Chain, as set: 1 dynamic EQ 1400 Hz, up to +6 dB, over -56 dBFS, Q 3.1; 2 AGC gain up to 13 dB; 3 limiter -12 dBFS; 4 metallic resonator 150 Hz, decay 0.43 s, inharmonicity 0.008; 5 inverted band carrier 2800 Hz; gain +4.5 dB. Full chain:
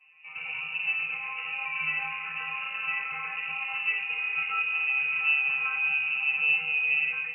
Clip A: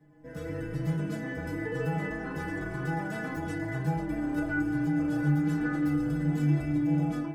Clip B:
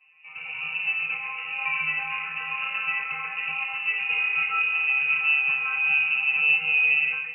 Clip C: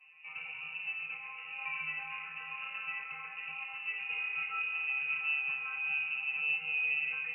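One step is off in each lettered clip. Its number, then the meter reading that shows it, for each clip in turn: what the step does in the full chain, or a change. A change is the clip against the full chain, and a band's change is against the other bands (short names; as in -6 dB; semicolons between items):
5, loudness change -3.5 LU; 3, mean gain reduction 3.0 dB; 2, momentary loudness spread change +1 LU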